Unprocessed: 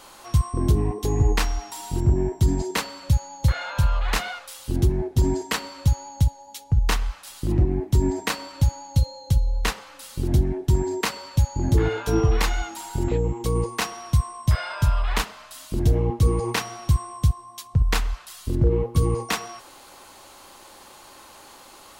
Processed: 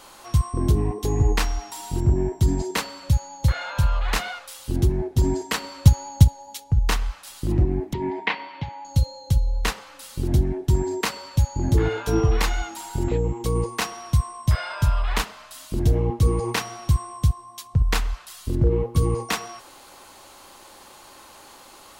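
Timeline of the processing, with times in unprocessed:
0:05.60–0:06.60: transient designer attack +8 dB, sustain +3 dB
0:07.93–0:08.85: loudspeaker in its box 200–3,400 Hz, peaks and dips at 280 Hz −5 dB, 560 Hz −5 dB, 920 Hz +6 dB, 1,300 Hz −7 dB, 2,100 Hz +9 dB, 3,100 Hz +3 dB

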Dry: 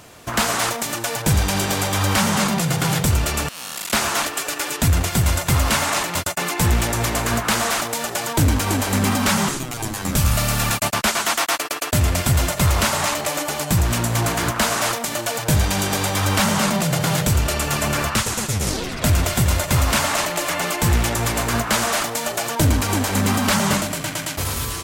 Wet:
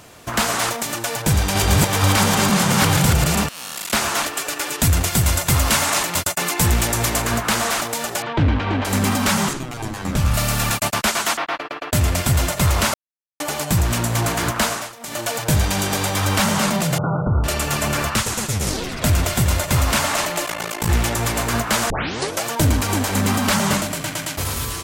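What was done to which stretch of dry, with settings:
0:01.08–0:03.46: delay that plays each chunk backwards 473 ms, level 0 dB
0:04.78–0:07.22: high-shelf EQ 4,500 Hz +5 dB
0:08.22–0:08.85: low-pass filter 3,400 Hz 24 dB per octave
0:09.53–0:10.34: low-pass filter 3,000 Hz 6 dB per octave
0:11.37–0:11.93: high-frequency loss of the air 330 metres
0:12.94–0:13.40: silence
0:14.64–0:15.23: duck −16.5 dB, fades 0.26 s
0:16.98–0:17.44: linear-phase brick-wall low-pass 1,500 Hz
0:20.46–0:20.89: amplitude modulation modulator 55 Hz, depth 85%
0:21.90: tape start 0.53 s

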